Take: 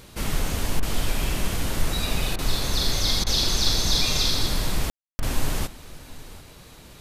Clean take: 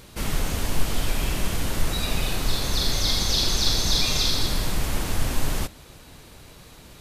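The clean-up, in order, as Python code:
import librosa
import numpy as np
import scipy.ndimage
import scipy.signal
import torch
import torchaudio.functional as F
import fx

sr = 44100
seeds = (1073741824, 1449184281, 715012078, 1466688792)

y = fx.fix_ambience(x, sr, seeds[0], print_start_s=6.49, print_end_s=6.99, start_s=4.9, end_s=5.19)
y = fx.fix_interpolate(y, sr, at_s=(0.8, 2.36, 3.24, 5.2), length_ms=25.0)
y = fx.fix_echo_inverse(y, sr, delay_ms=741, level_db=-19.5)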